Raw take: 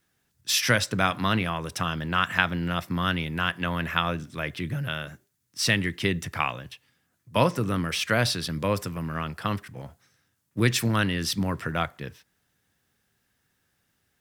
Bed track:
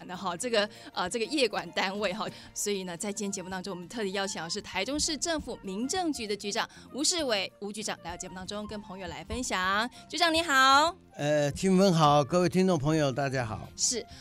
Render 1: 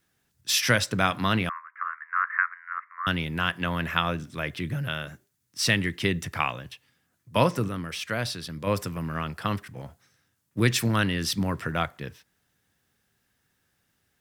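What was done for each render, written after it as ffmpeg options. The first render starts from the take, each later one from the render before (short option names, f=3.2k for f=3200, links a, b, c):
-filter_complex "[0:a]asettb=1/sr,asplit=3[a][b][c];[a]atrim=end=1.494[d];[b]atrim=start=1.49:end=3.07,asetpts=PTS-STARTPTS,afade=t=in:d=0.004:c=qsin,afade=t=out:st=1.576:d=0.004:c=qsin,asuperpass=centerf=1500:order=12:qfactor=1.4[e];[c]atrim=start=3.066[f];[d][e]acrossfade=d=0.004:c1=hsin:c2=qsin[g];[g][f]acrossfade=d=0.004:c1=qsin:c2=hsin,asplit=3[h][i][j];[h]atrim=end=7.682[k];[i]atrim=start=7.678:end=8.672,asetpts=PTS-STARTPTS,volume=-6dB[l];[j]atrim=start=8.668[m];[k][l]acrossfade=d=0.004:c1=hsin:c2=hsin[n];[n][m]acrossfade=d=0.004:c1=hsin:c2=hsin"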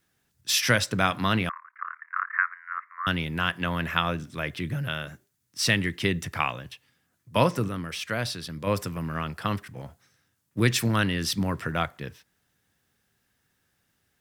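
-filter_complex "[0:a]asettb=1/sr,asplit=3[a][b][c];[a]atrim=end=1.514[d];[b]atrim=start=1.51:end=2.34,asetpts=PTS-STARTPTS,afade=t=in:d=0.004:c=qsin,afade=t=out:st=0.826:d=0.004:c=qsin,tremolo=f=35:d=0.889[e];[c]atrim=start=2.336[f];[d][e]acrossfade=d=0.004:c1=hsin:c2=qsin[g];[g][f]acrossfade=d=0.004:c1=qsin:c2=hsin"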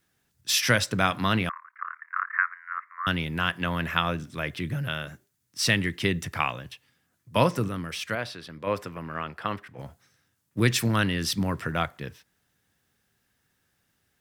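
-filter_complex "[0:a]asettb=1/sr,asplit=3[a][b][c];[a]atrim=end=8.154[d];[b]atrim=start=8.15:end=9.79,asetpts=PTS-STARTPTS,afade=t=in:d=0.004:c=qsin,afade=t=out:st=1.636:d=0.004:c=qsin,bass=f=250:g=-9,treble=f=4k:g=-12[e];[c]atrim=start=9.786[f];[d][e]acrossfade=d=0.004:c1=hsin:c2=qsin[g];[g][f]acrossfade=d=0.004:c1=qsin:c2=hsin"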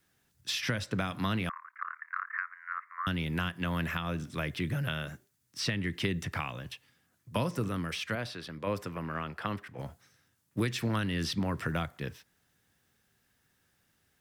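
-filter_complex "[0:a]alimiter=limit=-11.5dB:level=0:latency=1:release=307,acrossover=split=340|4500[a][b][c];[a]acompressor=threshold=-30dB:ratio=4[d];[b]acompressor=threshold=-33dB:ratio=4[e];[c]acompressor=threshold=-48dB:ratio=4[f];[d][e][f]amix=inputs=3:normalize=0"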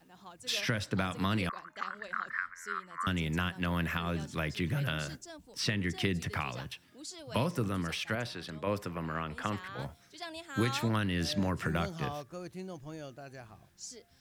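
-filter_complex "[1:a]volume=-18dB[a];[0:a][a]amix=inputs=2:normalize=0"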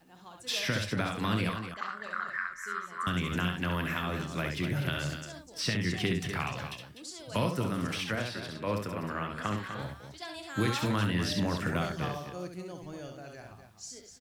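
-filter_complex "[0:a]asplit=2[a][b];[b]adelay=28,volume=-14dB[c];[a][c]amix=inputs=2:normalize=0,aecho=1:1:67.06|247.8:0.562|0.355"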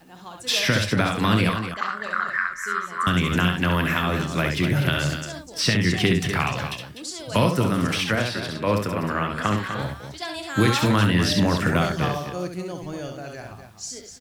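-af "volume=10dB"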